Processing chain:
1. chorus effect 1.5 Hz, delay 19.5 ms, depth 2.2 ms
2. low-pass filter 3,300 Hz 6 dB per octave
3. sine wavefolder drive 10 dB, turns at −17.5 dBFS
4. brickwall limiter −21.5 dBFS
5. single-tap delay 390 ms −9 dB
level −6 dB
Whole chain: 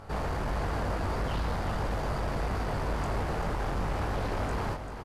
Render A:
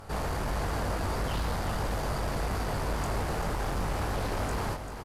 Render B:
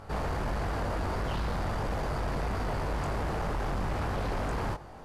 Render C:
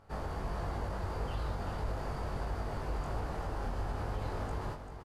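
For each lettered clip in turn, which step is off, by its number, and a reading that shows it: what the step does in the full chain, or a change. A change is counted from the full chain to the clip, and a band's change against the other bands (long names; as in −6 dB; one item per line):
2, 8 kHz band +7.0 dB
5, change in crest factor −2.0 dB
3, distortion level −3 dB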